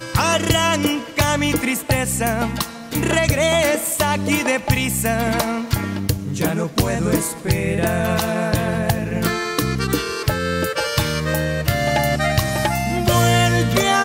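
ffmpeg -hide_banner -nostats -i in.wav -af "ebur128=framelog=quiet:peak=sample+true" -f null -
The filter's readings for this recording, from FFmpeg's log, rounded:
Integrated loudness:
  I:         -19.3 LUFS
  Threshold: -29.3 LUFS
Loudness range:
  LRA:         2.0 LU
  Threshold: -39.7 LUFS
  LRA low:   -20.7 LUFS
  LRA high:  -18.6 LUFS
Sample peak:
  Peak:       -4.4 dBFS
True peak:
  Peak:       -4.4 dBFS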